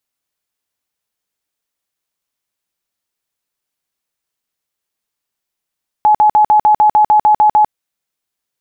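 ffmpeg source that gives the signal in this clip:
ffmpeg -f lavfi -i "aevalsrc='0.531*sin(2*PI*848*mod(t,0.15))*lt(mod(t,0.15),82/848)':duration=1.65:sample_rate=44100" out.wav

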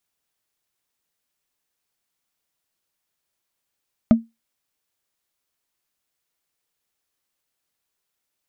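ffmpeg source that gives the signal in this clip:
ffmpeg -f lavfi -i "aevalsrc='0.562*pow(10,-3*t/0.2)*sin(2*PI*228*t)+0.2*pow(10,-3*t/0.059)*sin(2*PI*628.6*t)+0.0708*pow(10,-3*t/0.026)*sin(2*PI*1232.1*t)+0.0251*pow(10,-3*t/0.014)*sin(2*PI*2036.7*t)+0.00891*pow(10,-3*t/0.009)*sin(2*PI*3041.5*t)':duration=0.45:sample_rate=44100" out.wav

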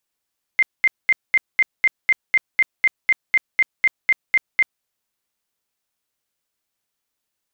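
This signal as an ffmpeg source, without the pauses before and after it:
ffmpeg -f lavfi -i "aevalsrc='0.282*sin(2*PI*2090*mod(t,0.25))*lt(mod(t,0.25),75/2090)':duration=4.25:sample_rate=44100" out.wav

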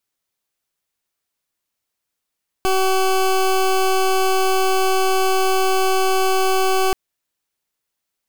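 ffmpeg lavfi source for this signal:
ffmpeg -f lavfi -i "aevalsrc='0.15*(2*lt(mod(379*t,1),0.2)-1)':duration=4.28:sample_rate=44100" out.wav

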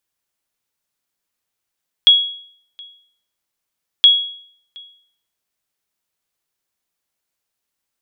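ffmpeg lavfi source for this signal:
ffmpeg -f lavfi -i "aevalsrc='0.75*(sin(2*PI*3330*mod(t,1.97))*exp(-6.91*mod(t,1.97)/0.58)+0.0398*sin(2*PI*3330*max(mod(t,1.97)-0.72,0))*exp(-6.91*max(mod(t,1.97)-0.72,0)/0.58))':duration=3.94:sample_rate=44100" out.wav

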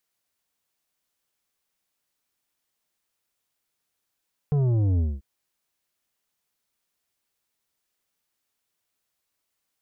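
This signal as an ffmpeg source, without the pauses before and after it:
ffmpeg -f lavfi -i "aevalsrc='0.1*clip((0.69-t)/0.22,0,1)*tanh(2.82*sin(2*PI*150*0.69/log(65/150)*(exp(log(65/150)*t/0.69)-1)))/tanh(2.82)':duration=0.69:sample_rate=44100" out.wav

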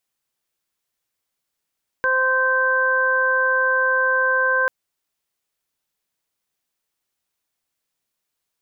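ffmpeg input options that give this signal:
ffmpeg -f lavfi -i "aevalsrc='0.0708*sin(2*PI*519*t)+0.0708*sin(2*PI*1038*t)+0.133*sin(2*PI*1557*t)':duration=2.64:sample_rate=44100" out.wav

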